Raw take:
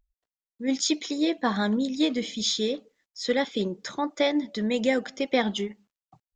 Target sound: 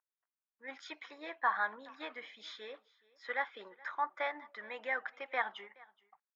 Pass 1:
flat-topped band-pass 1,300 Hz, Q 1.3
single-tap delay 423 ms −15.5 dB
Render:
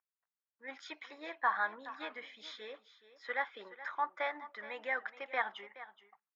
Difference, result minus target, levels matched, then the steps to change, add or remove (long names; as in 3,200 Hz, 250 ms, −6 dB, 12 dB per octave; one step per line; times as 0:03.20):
echo-to-direct +8.5 dB
change: single-tap delay 423 ms −24 dB